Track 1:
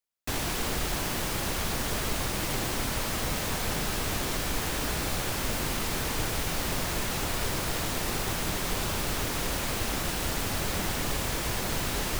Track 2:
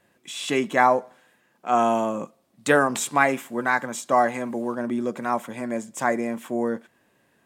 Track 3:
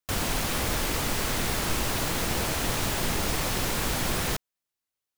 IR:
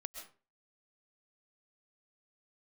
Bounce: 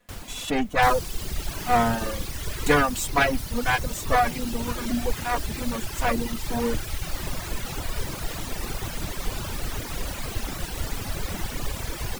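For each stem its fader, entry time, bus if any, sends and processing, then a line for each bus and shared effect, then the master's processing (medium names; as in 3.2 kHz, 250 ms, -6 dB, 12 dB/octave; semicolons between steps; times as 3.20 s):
0.0 dB, 0.55 s, no send, none
+0.5 dB, 0.00 s, no send, comb filter that takes the minimum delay 4.1 ms
-10.0 dB, 0.00 s, no send, auto duck -6 dB, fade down 0.50 s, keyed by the second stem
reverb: none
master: reverb removal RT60 1.8 s; bass shelf 94 Hz +8.5 dB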